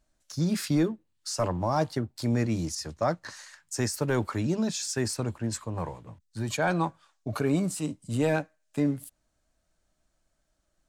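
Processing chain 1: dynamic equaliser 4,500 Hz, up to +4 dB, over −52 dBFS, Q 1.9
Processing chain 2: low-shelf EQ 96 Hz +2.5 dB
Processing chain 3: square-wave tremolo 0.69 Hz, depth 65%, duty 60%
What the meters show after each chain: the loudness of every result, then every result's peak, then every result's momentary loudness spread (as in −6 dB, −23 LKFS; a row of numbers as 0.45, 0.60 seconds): −29.5, −29.5, −31.0 LKFS; −15.5, −15.5, −16.0 dBFS; 11, 11, 15 LU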